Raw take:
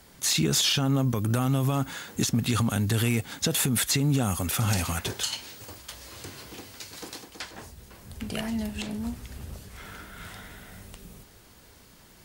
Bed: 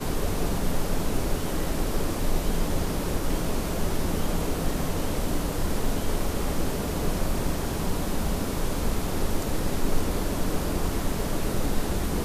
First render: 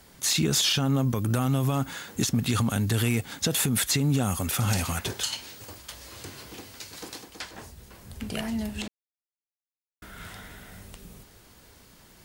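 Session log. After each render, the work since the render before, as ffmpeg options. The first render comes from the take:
ffmpeg -i in.wav -filter_complex "[0:a]asplit=3[link_01][link_02][link_03];[link_01]atrim=end=8.88,asetpts=PTS-STARTPTS,afade=type=out:start_time=8.876:duration=0.004:curve=hsin[link_04];[link_02]atrim=start=8.88:end=10.02,asetpts=PTS-STARTPTS,volume=0[link_05];[link_03]atrim=start=10.02,asetpts=PTS-STARTPTS,afade=type=in:duration=0.004:curve=hsin[link_06];[link_04][link_05][link_06]concat=n=3:v=0:a=1" out.wav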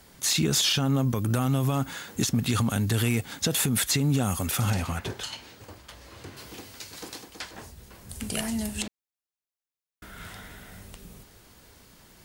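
ffmpeg -i in.wav -filter_complex "[0:a]asettb=1/sr,asplit=3[link_01][link_02][link_03];[link_01]atrim=end=4.704[link_04];[link_02]atrim=start=4.7:end=6.37,asetpts=PTS-STARTPTS,afade=type=in:duration=0.004:curve=qsin,afade=type=out:start_time=1.666:duration=0.004:curve=qsin,highshelf=frequency=3800:gain=-11.5[link_05];[link_03]atrim=start=6.366[link_06];[link_04][link_05]acrossfade=duration=0.004:curve1=hsin:curve2=qsin[link_07];[link_07][link_06]acrossfade=duration=0.004:curve1=qsin:curve2=hsin,asettb=1/sr,asplit=3[link_08][link_09][link_10];[link_08]atrim=end=8.094[link_11];[link_09]atrim=start=8.09:end=8.83,asetpts=PTS-STARTPTS,afade=type=in:duration=0.004:curve=qsin,afade=type=out:start_time=0.736:duration=0.004:curve=qsin,equalizer=frequency=9200:width_type=o:width=1.3:gain=12.5[link_12];[link_10]atrim=start=8.826[link_13];[link_11][link_12]acrossfade=duration=0.004:curve1=hsin:curve2=qsin[link_14];[link_14][link_13]acrossfade=duration=0.004:curve1=qsin:curve2=hsin" out.wav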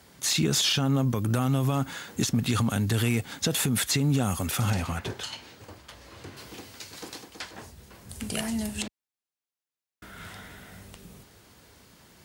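ffmpeg -i in.wav -af "highpass=61,highshelf=frequency=9400:gain=-4.5" out.wav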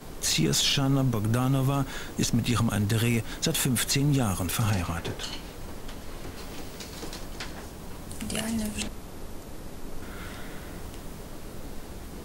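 ffmpeg -i in.wav -i bed.wav -filter_complex "[1:a]volume=-13.5dB[link_01];[0:a][link_01]amix=inputs=2:normalize=0" out.wav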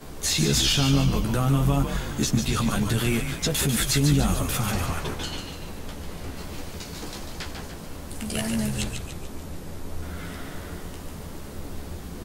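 ffmpeg -i in.wav -filter_complex "[0:a]asplit=2[link_01][link_02];[link_02]adelay=14,volume=-4.5dB[link_03];[link_01][link_03]amix=inputs=2:normalize=0,asplit=2[link_04][link_05];[link_05]asplit=6[link_06][link_07][link_08][link_09][link_10][link_11];[link_06]adelay=145,afreqshift=-92,volume=-6dB[link_12];[link_07]adelay=290,afreqshift=-184,volume=-11.8dB[link_13];[link_08]adelay=435,afreqshift=-276,volume=-17.7dB[link_14];[link_09]adelay=580,afreqshift=-368,volume=-23.5dB[link_15];[link_10]adelay=725,afreqshift=-460,volume=-29.4dB[link_16];[link_11]adelay=870,afreqshift=-552,volume=-35.2dB[link_17];[link_12][link_13][link_14][link_15][link_16][link_17]amix=inputs=6:normalize=0[link_18];[link_04][link_18]amix=inputs=2:normalize=0" out.wav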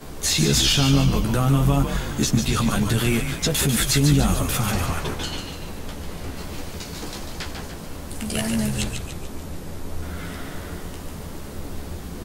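ffmpeg -i in.wav -af "volume=3dB" out.wav

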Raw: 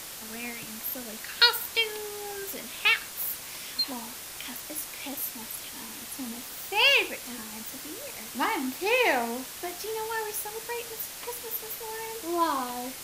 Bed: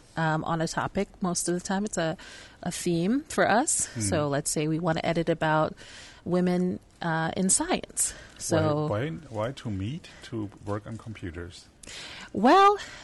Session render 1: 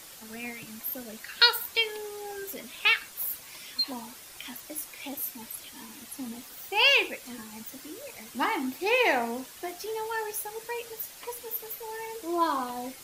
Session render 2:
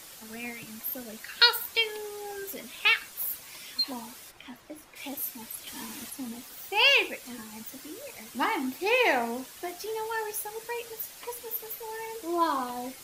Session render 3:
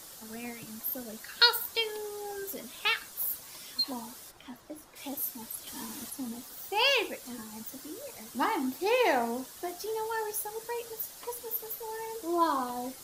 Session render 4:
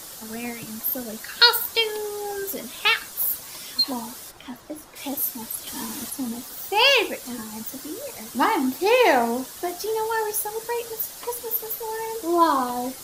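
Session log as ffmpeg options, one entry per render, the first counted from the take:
ffmpeg -i in.wav -af "afftdn=noise_reduction=8:noise_floor=-41" out.wav
ffmpeg -i in.wav -filter_complex "[0:a]asplit=3[link_01][link_02][link_03];[link_01]afade=type=out:start_time=4.3:duration=0.02[link_04];[link_02]lowpass=frequency=1400:poles=1,afade=type=in:start_time=4.3:duration=0.02,afade=type=out:start_time=4.95:duration=0.02[link_05];[link_03]afade=type=in:start_time=4.95:duration=0.02[link_06];[link_04][link_05][link_06]amix=inputs=3:normalize=0,asplit=3[link_07][link_08][link_09];[link_07]atrim=end=5.672[link_10];[link_08]atrim=start=5.668:end=6.102,asetpts=PTS-STARTPTS,volume=5dB[link_11];[link_09]atrim=start=6.098[link_12];[link_10][link_11]acrossfade=duration=0.004:curve1=hsin:curve2=hsin[link_13];[link_13][link_12]acrossfade=duration=0.004:curve1=hsin:curve2=hsin" out.wav
ffmpeg -i in.wav -af "equalizer=frequency=2400:width_type=o:width=0.84:gain=-8" out.wav
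ffmpeg -i in.wav -af "volume=8.5dB,alimiter=limit=-2dB:level=0:latency=1" out.wav

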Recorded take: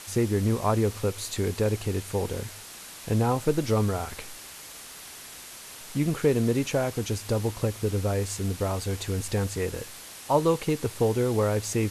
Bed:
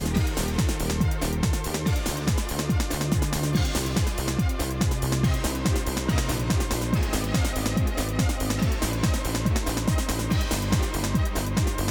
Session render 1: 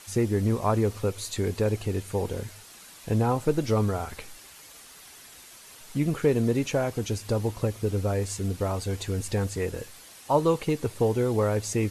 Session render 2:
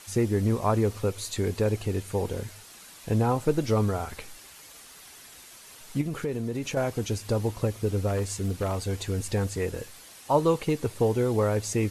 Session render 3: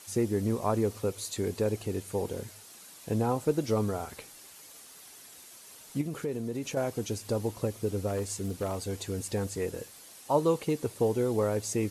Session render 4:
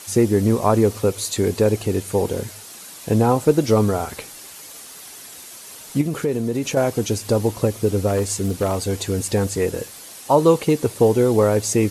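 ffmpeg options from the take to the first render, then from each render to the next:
ffmpeg -i in.wav -af "afftdn=noise_reduction=7:noise_floor=-44" out.wav
ffmpeg -i in.wav -filter_complex "[0:a]asettb=1/sr,asplit=3[link_01][link_02][link_03];[link_01]atrim=end=6.014[link_04];[link_02]atrim=start=6.01:end=6.77,asetpts=PTS-STARTPTS,afade=type=in:duration=0.004:curve=qsin,afade=type=out:start_time=0.756:duration=0.004:curve=qsin,acompressor=threshold=-28dB:ratio=3:attack=3.2:release=140:knee=1:detection=peak[link_05];[link_03]atrim=start=6.766[link_06];[link_04][link_05]acrossfade=duration=0.004:curve1=hsin:curve2=qsin[link_07];[link_07][link_06]acrossfade=duration=0.004:curve1=qsin:curve2=hsin,asettb=1/sr,asplit=3[link_08][link_09][link_10];[link_08]atrim=end=8.074[link_11];[link_09]atrim=start=8.07:end=8.78,asetpts=PTS-STARTPTS,afade=type=in:duration=0.004:curve=qsin,afade=type=out:start_time=0.706:duration=0.004:curve=qsin,aeval=exprs='0.1*(abs(mod(val(0)/0.1+3,4)-2)-1)':channel_layout=same[link_12];[link_10]atrim=start=8.776[link_13];[link_11][link_12]acrossfade=duration=0.004:curve1=hsin:curve2=qsin[link_14];[link_14][link_13]acrossfade=duration=0.004:curve1=qsin:curve2=hsin" out.wav
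ffmpeg -i in.wav -af "highpass=frequency=210:poles=1,equalizer=frequency=1900:width_type=o:width=2.8:gain=-6" out.wav
ffmpeg -i in.wav -af "volume=11.5dB,alimiter=limit=-3dB:level=0:latency=1" out.wav

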